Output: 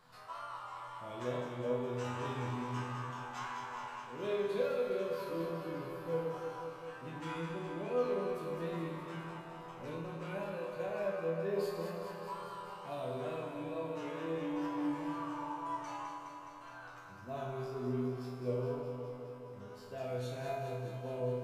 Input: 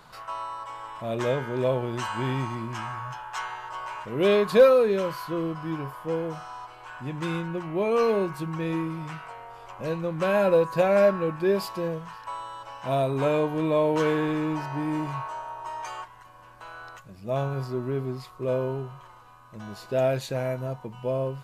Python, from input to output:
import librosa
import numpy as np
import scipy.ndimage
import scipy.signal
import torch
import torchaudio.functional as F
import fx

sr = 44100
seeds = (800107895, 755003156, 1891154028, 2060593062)

p1 = fx.wow_flutter(x, sr, seeds[0], rate_hz=2.1, depth_cents=110.0)
p2 = fx.rider(p1, sr, range_db=4, speed_s=0.5)
p3 = fx.resonator_bank(p2, sr, root=40, chord='minor', decay_s=0.81)
p4 = p3 + fx.echo_alternate(p3, sr, ms=104, hz=860.0, feedback_pct=85, wet_db=-5.0, dry=0)
y = p4 * librosa.db_to_amplitude(3.0)